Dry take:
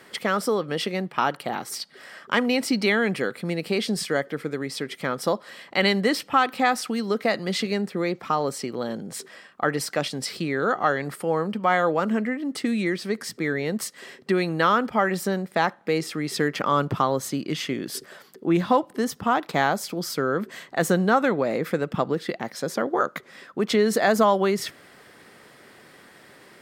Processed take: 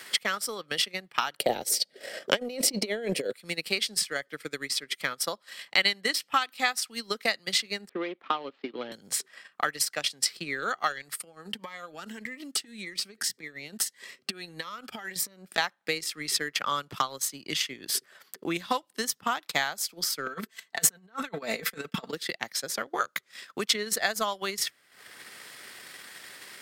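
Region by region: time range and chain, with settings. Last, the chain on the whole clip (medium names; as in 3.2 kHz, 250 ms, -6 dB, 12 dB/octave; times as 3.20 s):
1.39–3.33 s: high-pass 230 Hz 6 dB/octave + resonant low shelf 780 Hz +11.5 dB, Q 3 + compressor with a negative ratio -16 dBFS
7.89–8.92 s: median filter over 15 samples + elliptic band-pass 270–3200 Hz, stop band 50 dB + bass shelf 410 Hz +9.5 dB
11.19–15.58 s: compression 20:1, threshold -28 dBFS + Shepard-style phaser rising 1.7 Hz
20.26–22.13 s: gate -37 dBFS, range -14 dB + comb 4.5 ms + compressor with a negative ratio -25 dBFS, ratio -0.5
whole clip: tilt shelf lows -9.5 dB, about 1.3 kHz; transient shaper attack +8 dB, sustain -12 dB; three bands compressed up and down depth 40%; trim -7.5 dB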